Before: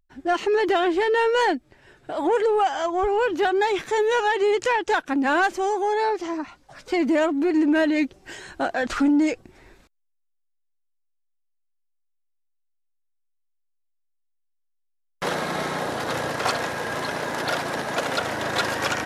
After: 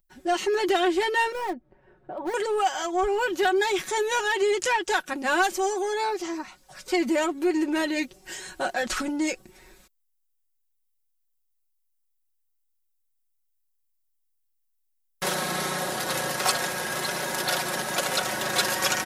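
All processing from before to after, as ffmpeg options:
ffmpeg -i in.wav -filter_complex "[0:a]asettb=1/sr,asplit=3[link_01][link_02][link_03];[link_01]atrim=end=1.324[link_04];[link_02]atrim=start=1.32:end=2.34,asetpts=PTS-STARTPTS,afade=type=in:duration=0.004:curve=qsin,afade=type=out:start_time=1.016:duration=0.004:curve=qsin,lowpass=1000,volume=19.5dB,asoftclip=hard,volume=-19.5dB,acompressor=threshold=-28dB:ratio=1.5:attack=3.2:release=140:knee=1:detection=peak[link_05];[link_03]atrim=start=2.336[link_06];[link_04][link_05]acrossfade=duration=0.004:curve1=hsin:curve2=qsin[link_07];[link_07][link_06]acrossfade=duration=0.004:curve1=qsin:curve2=hsin,aemphasis=mode=production:type=75kf,aecho=1:1:5.4:0.65,volume=-5dB" out.wav

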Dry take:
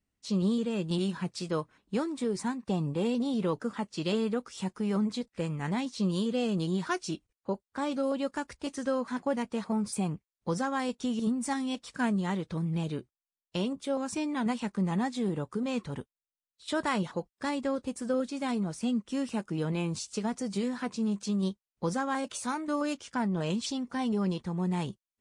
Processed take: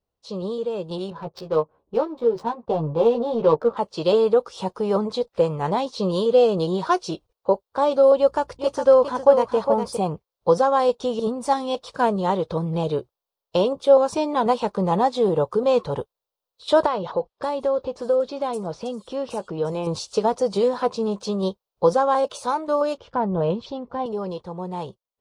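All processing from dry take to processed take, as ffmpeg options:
ffmpeg -i in.wav -filter_complex "[0:a]asettb=1/sr,asplit=3[link_01][link_02][link_03];[link_01]atrim=end=1.104[link_04];[link_02]atrim=start=1.1:end=3.77,asetpts=PTS-STARTPTS,afade=type=in:duration=0.004:curve=qsin,afade=type=out:start_time=2.666:duration=0.004:curve=qsin,highshelf=frequency=4900:gain=11,adynamicsmooth=sensitivity=4.5:basefreq=890,asplit=2[link_05][link_06];[link_06]adelay=13,volume=-3dB[link_07];[link_05][link_07]amix=inputs=2:normalize=0,atrim=end_sample=117747[link_08];[link_03]atrim=start=3.766[link_09];[link_04][link_08]acrossfade=duration=0.004:curve1=hsin:curve2=qsin[link_10];[link_10][link_09]acrossfade=duration=0.004:curve1=qsin:curve2=hsin,asettb=1/sr,asplit=3[link_11][link_12][link_13];[link_11]atrim=end=8.184[link_14];[link_12]atrim=start=8.18:end=9.97,asetpts=PTS-STARTPTS,afade=type=in:duration=0.004:curve=qsin,afade=type=out:start_time=1.786:duration=0.004:curve=qsin,aeval=exprs='val(0)+0.00112*(sin(2*PI*60*n/s)+sin(2*PI*2*60*n/s)/2+sin(2*PI*3*60*n/s)/3+sin(2*PI*4*60*n/s)/4+sin(2*PI*5*60*n/s)/5)':channel_layout=same,bandreject=frequency=3900:width=15,aecho=1:1:408:0.422,atrim=end_sample=78939[link_15];[link_13]atrim=start=9.966[link_16];[link_14][link_15]acrossfade=duration=0.004:curve1=hsin:curve2=qsin[link_17];[link_17][link_16]acrossfade=duration=0.004:curve1=qsin:curve2=hsin,asettb=1/sr,asplit=3[link_18][link_19][link_20];[link_18]atrim=end=16.864[link_21];[link_19]atrim=start=16.86:end=19.87,asetpts=PTS-STARTPTS,afade=type=in:duration=0.004:curve=qsin,afade=type=out:start_time=3.006:duration=0.004:curve=qsin,acompressor=threshold=-36dB:ratio=2.5:attack=3.2:release=140:knee=1:detection=peak,acrossover=split=5800[link_22][link_23];[link_23]adelay=570[link_24];[link_22][link_24]amix=inputs=2:normalize=0,atrim=end_sample=132741[link_25];[link_20]atrim=start=19.866[link_26];[link_21][link_25]acrossfade=duration=0.004:curve1=hsin:curve2=qsin[link_27];[link_27][link_26]acrossfade=duration=0.004:curve1=qsin:curve2=hsin,asettb=1/sr,asplit=3[link_28][link_29][link_30];[link_28]atrim=end=22.984[link_31];[link_29]atrim=start=22.98:end=24.06,asetpts=PTS-STARTPTS,afade=type=in:duration=0.004:curve=qsin,afade=type=out:start_time=1.076:duration=0.004:curve=qsin,lowpass=2900,lowshelf=frequency=210:gain=12[link_32];[link_30]atrim=start=24.056[link_33];[link_31][link_32]acrossfade=duration=0.004:curve1=hsin:curve2=qsin[link_34];[link_34][link_33]acrossfade=duration=0.004:curve1=qsin:curve2=hsin,equalizer=frequency=250:width_type=o:width=1:gain=-10,equalizer=frequency=500:width_type=o:width=1:gain=12,equalizer=frequency=1000:width_type=o:width=1:gain=7,equalizer=frequency=2000:width_type=o:width=1:gain=-11,equalizer=frequency=4000:width_type=o:width=1:gain=5,equalizer=frequency=8000:width_type=o:width=1:gain=-10,dynaudnorm=framelen=200:gausssize=31:maxgain=9dB" out.wav

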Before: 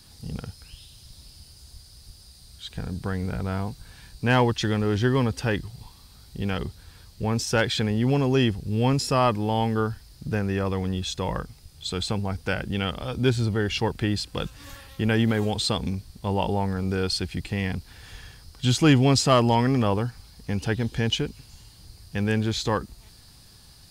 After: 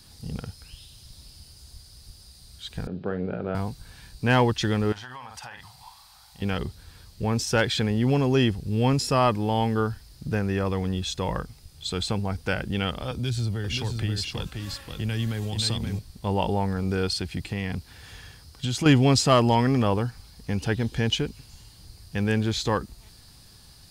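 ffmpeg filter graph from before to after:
ffmpeg -i in.wav -filter_complex "[0:a]asettb=1/sr,asplit=3[link_01][link_02][link_03];[link_01]atrim=end=2.874[link_04];[link_02]atrim=start=2.87:end=3.55,asetpts=PTS-STARTPTS,afade=type=in:duration=0.004:curve=qsin,afade=type=out:start_time=0.676:duration=0.004:curve=qsin,highpass=frequency=120:width=0.5412,highpass=frequency=120:width=1.3066,equalizer=frequency=130:width_type=q:width=4:gain=-9,equalizer=frequency=380:width_type=q:width=4:gain=6,equalizer=frequency=560:width_type=q:width=4:gain=7,equalizer=frequency=1000:width_type=q:width=4:gain=-7,equalizer=frequency=2000:width_type=q:width=4:gain=-9,lowpass=frequency=2800:width=0.5412,lowpass=frequency=2800:width=1.3066,asplit=2[link_05][link_06];[link_06]adelay=44,volume=-11.5dB[link_07];[link_05][link_07]amix=inputs=2:normalize=0,atrim=end_sample=29988[link_08];[link_03]atrim=start=3.546[link_09];[link_04][link_08]acrossfade=duration=0.004:curve1=hsin:curve2=qsin[link_10];[link_10][link_09]acrossfade=duration=0.004:curve1=qsin:curve2=hsin,asettb=1/sr,asplit=3[link_11][link_12][link_13];[link_11]atrim=end=4.924[link_14];[link_12]atrim=start=4.92:end=6.42,asetpts=PTS-STARTPTS,afade=type=in:duration=0.004:curve=qsin,afade=type=out:start_time=1.496:duration=0.004:curve=qsin,lowshelf=frequency=560:width_type=q:width=3:gain=-13.5,asplit=2[link_15][link_16];[link_16]adelay=48,volume=-8dB[link_17];[link_15][link_17]amix=inputs=2:normalize=0,atrim=end_sample=66150,acompressor=threshold=-36dB:ratio=12:attack=3.2:release=140:knee=1:detection=peak[link_18];[link_13]atrim=start=6.416[link_19];[link_14][link_18]acrossfade=duration=0.004:curve1=hsin:curve2=qsin[link_20];[link_20][link_19]acrossfade=duration=0.004:curve1=qsin:curve2=hsin,asettb=1/sr,asplit=3[link_21][link_22][link_23];[link_21]atrim=end=13.114[link_24];[link_22]atrim=start=13.11:end=15.99,asetpts=PTS-STARTPTS,afade=type=in:duration=0.004:curve=qsin,afade=type=out:start_time=2.876:duration=0.004:curve=qsin,acrossover=split=140|3000[link_25][link_26][link_27];[link_26]acompressor=threshold=-33dB:ratio=6:attack=3.2:release=140:knee=2.83:detection=peak[link_28];[link_25][link_28][link_27]amix=inputs=3:normalize=0,aecho=1:1:530:0.562,atrim=end_sample=127008[link_29];[link_23]atrim=start=15.986[link_30];[link_24][link_29]acrossfade=duration=0.004:curve1=hsin:curve2=qsin[link_31];[link_31][link_30]acrossfade=duration=0.004:curve1=qsin:curve2=hsin,asettb=1/sr,asplit=3[link_32][link_33][link_34];[link_32]atrim=end=17.084[link_35];[link_33]atrim=start=17.08:end=18.86,asetpts=PTS-STARTPTS,afade=type=in:duration=0.004:curve=qsin,afade=type=out:start_time=1.776:duration=0.004:curve=qsin,acompressor=threshold=-23dB:ratio=6:attack=3.2:release=140:knee=1:detection=peak,highpass=50[link_36];[link_34]atrim=start=18.856[link_37];[link_35][link_36]acrossfade=duration=0.004:curve1=hsin:curve2=qsin[link_38];[link_38][link_37]acrossfade=duration=0.004:curve1=qsin:curve2=hsin" out.wav

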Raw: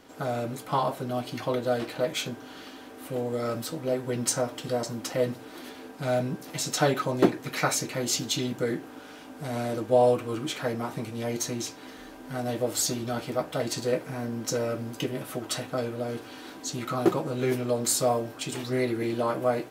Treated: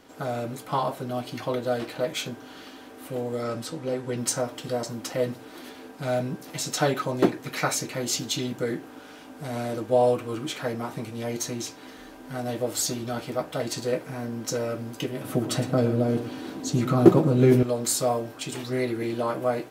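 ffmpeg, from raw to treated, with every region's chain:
ffmpeg -i in.wav -filter_complex "[0:a]asettb=1/sr,asplit=3[link_01][link_02][link_03];[link_01]atrim=end=3.434[link_04];[link_02]atrim=start=3.43:end=4.17,asetpts=PTS-STARTPTS,afade=type=in:duration=0.004:curve=qsin,afade=type=out:start_time=0.736:duration=0.004:curve=qsin,lowpass=10000,bandreject=frequency=640:width=17[link_05];[link_03]atrim=start=4.166[link_06];[link_04][link_05]acrossfade=duration=0.004:curve1=hsin:curve2=qsin[link_07];[link_07][link_06]acrossfade=duration=0.004:curve1=qsin:curve2=hsin,asettb=1/sr,asplit=3[link_08][link_09][link_10];[link_08]atrim=end=15.244[link_11];[link_09]atrim=start=15.24:end=17.63,asetpts=PTS-STARTPTS,afade=type=in:duration=0.004:curve=qsin,afade=type=out:start_time=2.386:duration=0.004:curve=qsin,highpass=60,equalizer=frequency=150:width=0.35:gain=12.5,aecho=1:1:112:0.211,atrim=end_sample=105399[link_12];[link_10]atrim=start=17.626[link_13];[link_11][link_12]acrossfade=duration=0.004:curve1=hsin:curve2=qsin[link_14];[link_14][link_13]acrossfade=duration=0.004:curve1=qsin:curve2=hsin" out.wav

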